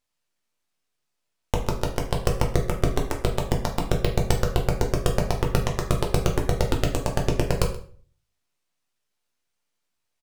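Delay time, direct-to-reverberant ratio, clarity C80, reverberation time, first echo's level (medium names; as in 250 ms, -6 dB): 128 ms, 1.0 dB, 12.0 dB, 0.45 s, -18.0 dB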